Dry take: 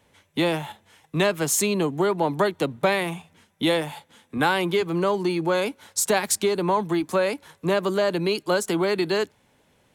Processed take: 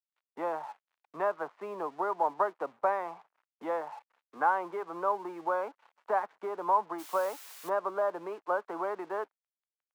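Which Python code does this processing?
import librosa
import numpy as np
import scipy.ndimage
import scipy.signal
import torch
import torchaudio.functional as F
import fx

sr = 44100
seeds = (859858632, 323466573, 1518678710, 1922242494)

y = scipy.signal.sosfilt(scipy.signal.butter(4, 1200.0, 'lowpass', fs=sr, output='sos'), x)
y = np.sign(y) * np.maximum(np.abs(y) - 10.0 ** (-54.5 / 20.0), 0.0)
y = fx.quant_dither(y, sr, seeds[0], bits=8, dither='triangular', at=(6.98, 7.68), fade=0.02)
y = scipy.signal.sosfilt(scipy.signal.cheby1(2, 1.0, 930.0, 'highpass', fs=sr, output='sos'), y)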